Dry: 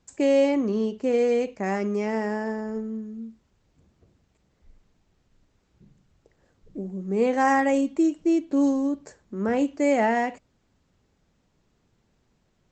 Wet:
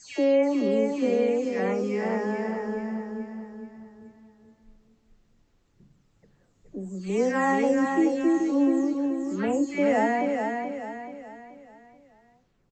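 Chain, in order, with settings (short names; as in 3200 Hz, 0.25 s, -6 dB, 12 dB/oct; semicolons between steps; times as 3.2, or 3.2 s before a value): spectral delay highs early, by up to 0.329 s; feedback echo 0.43 s, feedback 42%, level -5 dB; gain -1.5 dB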